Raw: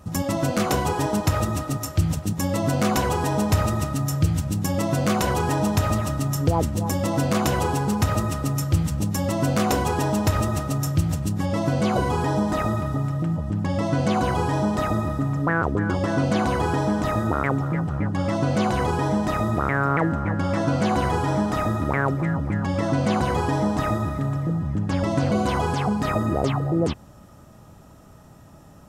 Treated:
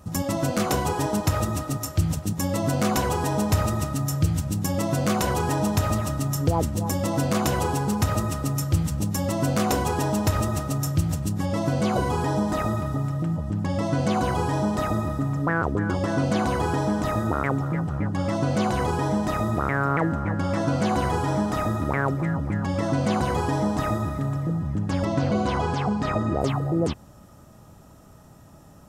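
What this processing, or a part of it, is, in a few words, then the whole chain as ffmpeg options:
exciter from parts: -filter_complex "[0:a]asplit=2[s0][s1];[s1]highpass=f=4200:p=1,asoftclip=type=tanh:threshold=0.0562,highpass=2100,volume=0.376[s2];[s0][s2]amix=inputs=2:normalize=0,asettb=1/sr,asplit=3[s3][s4][s5];[s3]atrim=end=25.054[s6];[s4]atrim=start=25.05:end=26.41,asetpts=PTS-STARTPTS,afade=t=in:d=0.004:c=qsin,afade=t=out:st=1.356:d=0.004:c=qsin,lowpass=5700[s7];[s5]atrim=start=26.406[s8];[s6][s7]acrossfade=d=0.004:c1=hsin:c2=qsin[s9];[s9][s8]acrossfade=d=0.004:c1=qsin:c2=hsin,volume=0.841"

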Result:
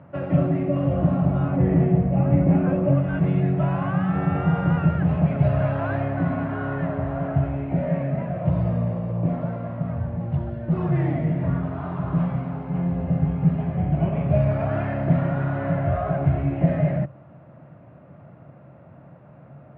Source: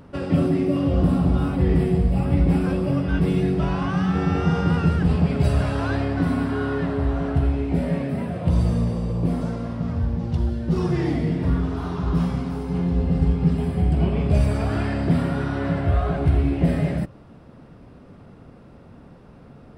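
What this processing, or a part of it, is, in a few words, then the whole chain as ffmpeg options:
bass cabinet: -filter_complex "[0:a]asettb=1/sr,asplit=3[s0][s1][s2];[s0]atrim=end=1.514[s3];[s1]atrim=start=1.51:end=2.95,asetpts=PTS-STARTPTS,afade=t=in:d=0.004:c=qsin,afade=t=out:st=1.436:d=0.004:c=qsin,equalizer=f=250:t=o:w=1:g=5,equalizer=f=500:t=o:w=1:g=3,equalizer=f=4000:t=o:w=1:g=-4[s4];[s2]atrim=start=2.946[s5];[s3][s4]acrossfade=d=0.004:c1=hsin:c2=qsin[s6];[s6][s5]acrossfade=d=0.004:c1=qsin:c2=hsin,highpass=f=89:w=0.5412,highpass=f=89:w=1.3066,equalizer=f=140:t=q:w=4:g=7,equalizer=f=240:t=q:w=4:g=-6,equalizer=f=430:t=q:w=4:g=-9,equalizer=f=620:t=q:w=4:g=10,lowpass=f=2400:w=0.5412,lowpass=f=2400:w=1.3066,volume=0.841"

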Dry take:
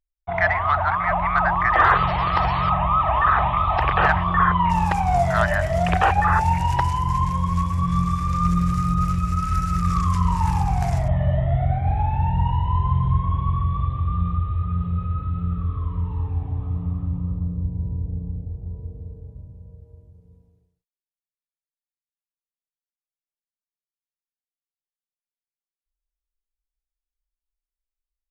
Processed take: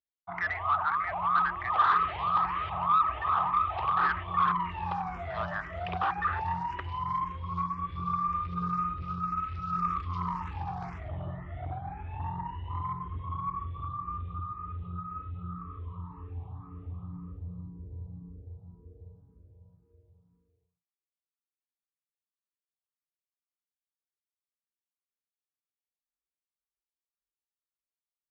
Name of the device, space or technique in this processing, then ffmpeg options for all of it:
barber-pole phaser into a guitar amplifier: -filter_complex "[0:a]asplit=2[s0][s1];[s1]afreqshift=1.9[s2];[s0][s2]amix=inputs=2:normalize=1,asoftclip=type=tanh:threshold=0.15,highpass=91,equalizer=f=130:t=q:w=4:g=-7,equalizer=f=230:t=q:w=4:g=-5,equalizer=f=370:t=q:w=4:g=3,equalizer=f=610:t=q:w=4:g=-5,equalizer=f=1200:t=q:w=4:g=9,lowpass=f=4100:w=0.5412,lowpass=f=4100:w=1.3066,asettb=1/sr,asplit=3[s3][s4][s5];[s3]atrim=end=9.784[s6];[s4]atrim=start=9.78:end=10.65,asetpts=PTS-STARTPTS,afade=t=in:d=0.004:c=qsin,afade=t=out:st=0.866:d=0.004:c=qsin,highshelf=f=4900:g=4.5[s7];[s5]atrim=start=10.646[s8];[s6][s7]acrossfade=d=0.004:c1=hsin:c2=qsin[s9];[s9][s8]acrossfade=d=0.004:c1=qsin:c2=hsin,volume=0.398"

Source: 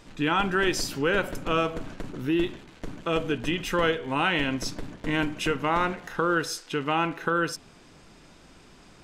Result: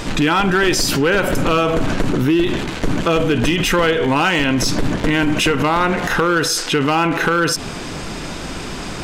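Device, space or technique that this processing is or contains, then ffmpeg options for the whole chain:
loud club master: -af "acompressor=threshold=0.0355:ratio=2.5,asoftclip=type=hard:threshold=0.0596,alimiter=level_in=47.3:limit=0.891:release=50:level=0:latency=1,volume=0.376"

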